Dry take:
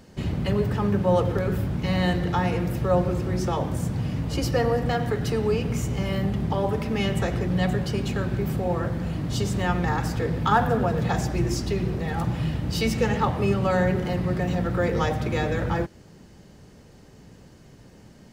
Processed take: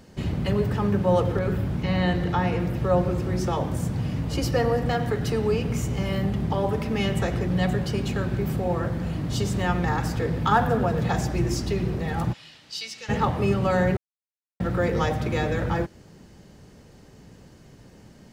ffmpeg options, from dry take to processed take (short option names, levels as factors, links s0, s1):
-filter_complex "[0:a]asettb=1/sr,asplit=3[s0][s1][s2];[s0]atrim=end=1.374[s3];[s1]atrim=start=1.37:end=3.18,asetpts=PTS-STARTPTS,afade=t=in:d=0.004:c=qsin,afade=t=out:st=1.806:d=0.004:c=qsin,acrossover=split=4400[s4][s5];[s5]acompressor=threshold=0.002:ratio=4:attack=1:release=60[s6];[s4][s6]amix=inputs=2:normalize=0[s7];[s2]atrim=start=3.176[s8];[s3][s7]acrossfade=d=0.004:c1=hsin:c2=qsin[s9];[s9][s8]acrossfade=d=0.004:c1=qsin:c2=hsin,asplit=3[s10][s11][s12];[s10]afade=t=out:st=12.32:d=0.02[s13];[s11]bandpass=f=4600:t=q:w=1.3,afade=t=in:st=12.32:d=0.02,afade=t=out:st=13.08:d=0.02[s14];[s12]afade=t=in:st=13.08:d=0.02[s15];[s13][s14][s15]amix=inputs=3:normalize=0,asplit=3[s16][s17][s18];[s16]atrim=end=13.97,asetpts=PTS-STARTPTS,afade=t=out:st=13.966:d=0.004:c=hsin[s19];[s17]atrim=start=13.97:end=14.6,asetpts=PTS-STARTPTS,volume=0[s20];[s18]atrim=start=14.6,asetpts=PTS-STARTPTS,afade=t=in:d=0.004:c=hsin[s21];[s19][s20][s21]concat=n=3:v=0:a=1"